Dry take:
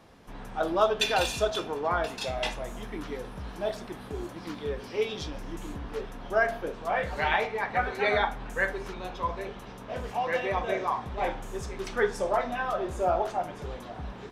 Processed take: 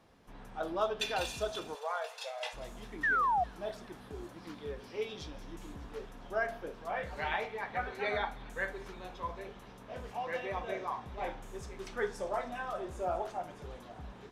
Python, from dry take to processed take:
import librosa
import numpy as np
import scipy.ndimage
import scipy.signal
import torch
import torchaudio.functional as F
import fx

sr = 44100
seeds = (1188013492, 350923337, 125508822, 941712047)

p1 = fx.brickwall_highpass(x, sr, low_hz=440.0, at=(1.74, 2.53), fade=0.02)
p2 = fx.spec_paint(p1, sr, seeds[0], shape='fall', start_s=3.03, length_s=0.41, low_hz=680.0, high_hz=1900.0, level_db=-20.0)
p3 = p2 + fx.echo_wet_highpass(p2, sr, ms=201, feedback_pct=75, hz=3800.0, wet_db=-13.5, dry=0)
y = p3 * librosa.db_to_amplitude(-8.5)